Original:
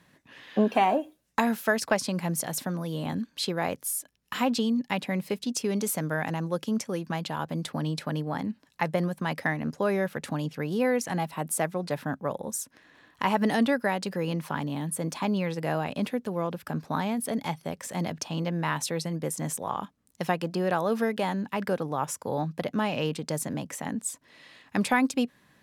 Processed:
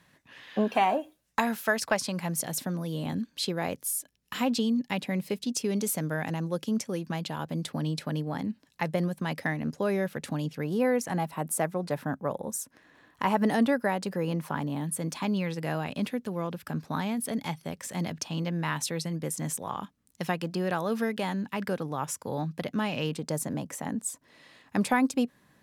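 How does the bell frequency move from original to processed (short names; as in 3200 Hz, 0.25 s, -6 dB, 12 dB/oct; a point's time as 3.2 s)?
bell -4.5 dB 1.9 oct
300 Hz
from 2.39 s 1100 Hz
from 10.64 s 3500 Hz
from 14.84 s 670 Hz
from 23.12 s 2800 Hz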